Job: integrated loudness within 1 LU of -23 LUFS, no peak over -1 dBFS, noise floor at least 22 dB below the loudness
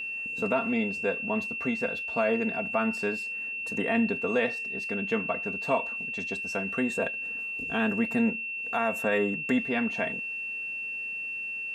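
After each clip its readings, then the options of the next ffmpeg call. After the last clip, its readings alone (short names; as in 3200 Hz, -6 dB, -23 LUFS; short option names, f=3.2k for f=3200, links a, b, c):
steady tone 2700 Hz; tone level -32 dBFS; loudness -28.5 LUFS; peak -13.5 dBFS; loudness target -23.0 LUFS
-> -af "bandreject=f=2.7k:w=30"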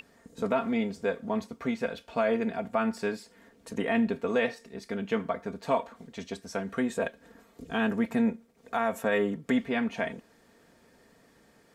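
steady tone none; loudness -30.5 LUFS; peak -14.5 dBFS; loudness target -23.0 LUFS
-> -af "volume=7.5dB"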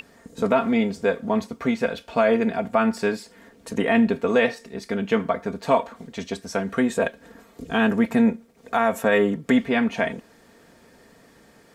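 loudness -23.0 LUFS; peak -7.0 dBFS; noise floor -54 dBFS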